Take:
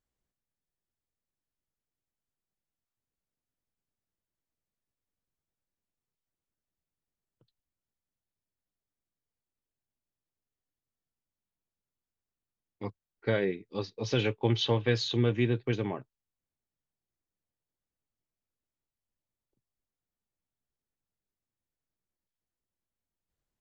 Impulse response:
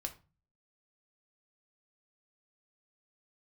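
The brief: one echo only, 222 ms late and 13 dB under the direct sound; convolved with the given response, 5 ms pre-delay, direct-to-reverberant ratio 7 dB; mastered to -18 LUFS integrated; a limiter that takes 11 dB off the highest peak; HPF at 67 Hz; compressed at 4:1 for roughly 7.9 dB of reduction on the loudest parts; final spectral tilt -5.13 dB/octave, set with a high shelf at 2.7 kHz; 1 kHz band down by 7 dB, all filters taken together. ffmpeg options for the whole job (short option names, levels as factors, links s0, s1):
-filter_complex "[0:a]highpass=67,equalizer=f=1000:t=o:g=-8.5,highshelf=f=2700:g=-5,acompressor=threshold=0.0251:ratio=4,alimiter=level_in=2.37:limit=0.0631:level=0:latency=1,volume=0.422,aecho=1:1:222:0.224,asplit=2[s0][s1];[1:a]atrim=start_sample=2205,adelay=5[s2];[s1][s2]afir=irnorm=-1:irlink=0,volume=0.531[s3];[s0][s3]amix=inputs=2:normalize=0,volume=15"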